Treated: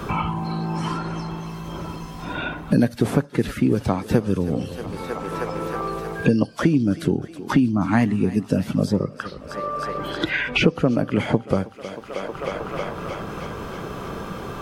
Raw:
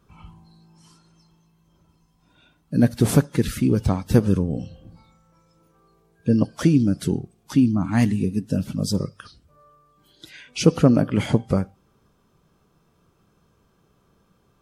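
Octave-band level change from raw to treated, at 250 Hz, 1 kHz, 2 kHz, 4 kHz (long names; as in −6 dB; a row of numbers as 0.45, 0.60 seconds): 0.0, +9.0, +9.5, +4.0 decibels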